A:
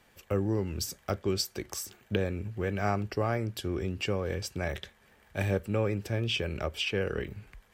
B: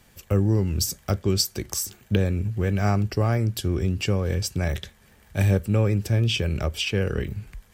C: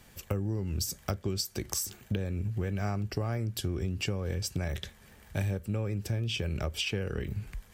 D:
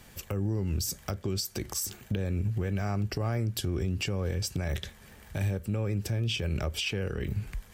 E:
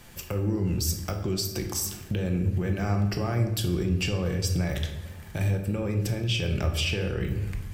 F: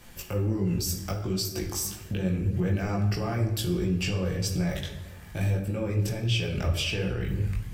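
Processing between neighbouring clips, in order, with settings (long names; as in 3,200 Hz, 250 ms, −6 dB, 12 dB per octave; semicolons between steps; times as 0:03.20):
bass and treble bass +9 dB, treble +8 dB; level +2.5 dB
downward compressor 5 to 1, threshold −29 dBFS, peak gain reduction 13 dB
brickwall limiter −24.5 dBFS, peak gain reduction 11.5 dB; level +3.5 dB
rectangular room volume 400 cubic metres, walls mixed, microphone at 0.82 metres; level +2 dB
multi-voice chorus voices 4, 1.4 Hz, delay 19 ms, depth 3 ms; level +2 dB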